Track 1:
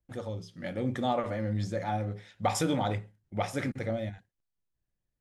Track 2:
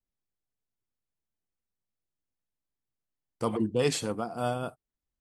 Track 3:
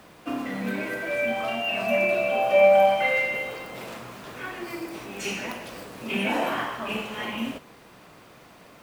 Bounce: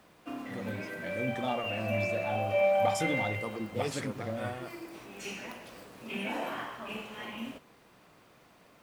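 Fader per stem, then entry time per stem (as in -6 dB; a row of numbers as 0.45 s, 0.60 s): -4.5 dB, -9.5 dB, -9.5 dB; 0.40 s, 0.00 s, 0.00 s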